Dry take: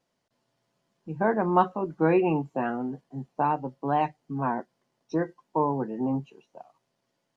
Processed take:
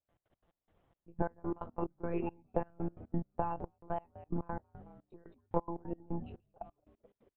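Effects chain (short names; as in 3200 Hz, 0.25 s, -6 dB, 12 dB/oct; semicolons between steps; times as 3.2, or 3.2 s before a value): compressor 12:1, threshold -35 dBFS, peak gain reduction 20 dB; monotone LPC vocoder at 8 kHz 170 Hz; transient shaper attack +5 dB, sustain -1 dB; LPF 1700 Hz 6 dB/oct; frequency-shifting echo 0.22 s, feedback 48%, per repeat -100 Hz, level -15.5 dB; step gate ".x.x.x..xxx...x." 177 bpm -24 dB; gain +3.5 dB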